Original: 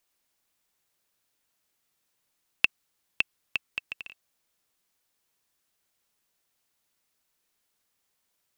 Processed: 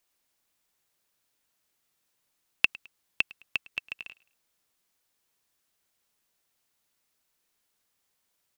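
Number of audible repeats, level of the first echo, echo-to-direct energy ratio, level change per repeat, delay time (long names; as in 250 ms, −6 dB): 2, −23.0 dB, −22.5 dB, −8.5 dB, 106 ms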